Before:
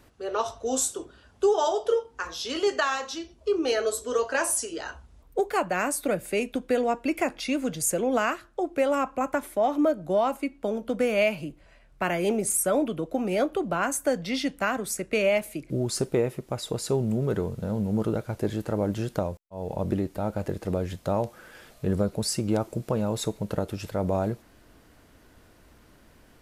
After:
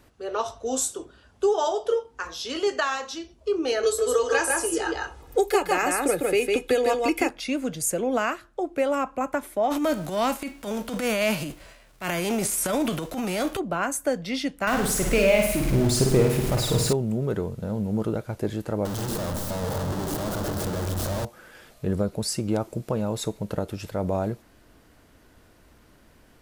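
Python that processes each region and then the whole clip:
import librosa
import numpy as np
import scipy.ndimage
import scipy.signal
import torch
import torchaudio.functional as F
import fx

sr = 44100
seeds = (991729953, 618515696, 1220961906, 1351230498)

y = fx.chain(x, sr, fx.comb(ms=2.4, depth=0.67),
    fx.echo_single(ms=153, db=-3.5),
    fx.band_squash(depth_pct=70), at=(3.83, 7.3))
y = fx.envelope_flatten(y, sr, power=0.6, at=(9.7, 13.58), fade=0.02)
y = fx.transient(y, sr, attack_db=-10, sustain_db=8, at=(9.7, 13.58), fade=0.02)
y = fx.chain(y, sr, fx.zero_step(step_db=-28.0),
    fx.low_shelf(hz=130.0, db=11.5),
    fx.room_flutter(wall_m=9.0, rt60_s=0.69), at=(14.67, 16.93))
y = fx.chain(y, sr, fx.clip_1bit(),
    fx.peak_eq(hz=2300.0, db=-10.0, octaves=0.73),
    fx.echo_wet_lowpass(ms=128, feedback_pct=74, hz=2000.0, wet_db=-6), at=(18.85, 21.25))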